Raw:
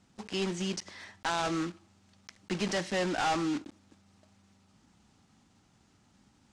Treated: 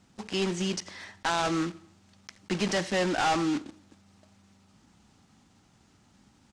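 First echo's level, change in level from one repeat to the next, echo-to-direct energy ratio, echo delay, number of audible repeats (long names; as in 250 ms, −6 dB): −23.0 dB, −6.0 dB, −22.0 dB, 86 ms, 3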